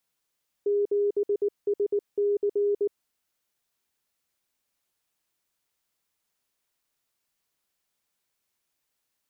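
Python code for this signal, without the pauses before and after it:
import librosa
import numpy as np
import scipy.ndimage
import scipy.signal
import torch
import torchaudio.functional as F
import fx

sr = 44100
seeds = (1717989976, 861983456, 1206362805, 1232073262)

y = fx.morse(sr, text='7SC', wpm=19, hz=408.0, level_db=-21.0)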